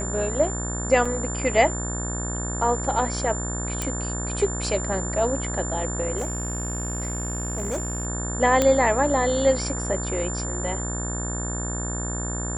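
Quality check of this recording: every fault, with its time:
buzz 60 Hz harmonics 30 -30 dBFS
tone 7200 Hz -31 dBFS
1.05 gap 4.9 ms
3.82 pop
6.17–8.07 clipped -23 dBFS
8.62 pop -6 dBFS

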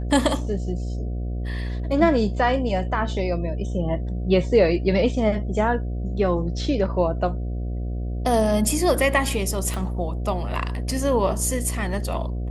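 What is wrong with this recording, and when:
buzz 60 Hz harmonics 12 -27 dBFS
9.74 pop -15 dBFS
10.91 gap 2.7 ms

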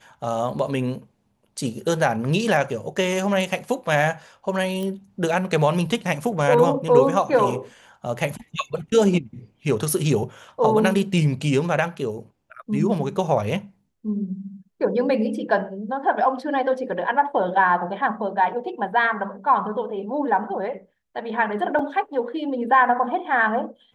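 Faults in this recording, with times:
4.83 pop -18 dBFS
21.79 gap 4.2 ms

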